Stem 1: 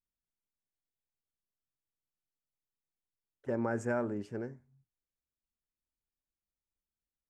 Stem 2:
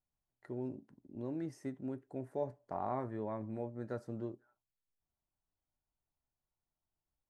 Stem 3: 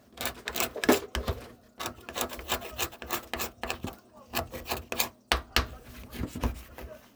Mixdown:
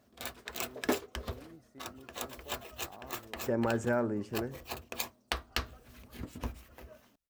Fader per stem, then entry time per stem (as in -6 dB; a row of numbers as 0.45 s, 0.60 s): +2.5 dB, -13.5 dB, -8.0 dB; 0.00 s, 0.10 s, 0.00 s